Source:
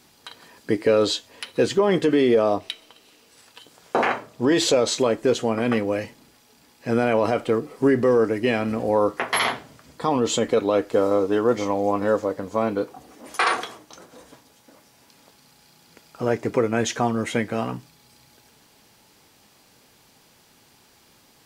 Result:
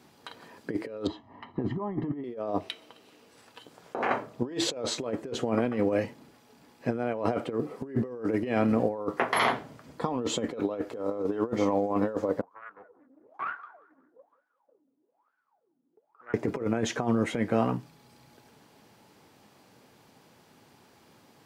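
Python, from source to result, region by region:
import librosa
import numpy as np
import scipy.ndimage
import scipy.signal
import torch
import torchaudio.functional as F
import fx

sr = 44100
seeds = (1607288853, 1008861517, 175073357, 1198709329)

y = fx.chain(x, sr, fx.lowpass(hz=1100.0, slope=12),
    fx.comb(ms=1.0, depth=0.86), at=(1.07, 2.24))
y = fx.chain(y, sr, fx.wah_lfo(hz=1.1, low_hz=260.0, high_hz=1500.0, q=21.0),
    fx.echo_feedback(ms=185, feedback_pct=31, wet_db=-19),
    fx.doppler_dist(depth_ms=0.43), at=(12.41, 16.34))
y = scipy.signal.sosfilt(scipy.signal.butter(2, 93.0, 'highpass', fs=sr, output='sos'), y)
y = fx.high_shelf(y, sr, hz=2200.0, db=-11.5)
y = fx.over_compress(y, sr, threshold_db=-25.0, ratio=-0.5)
y = y * 10.0 ** (-2.5 / 20.0)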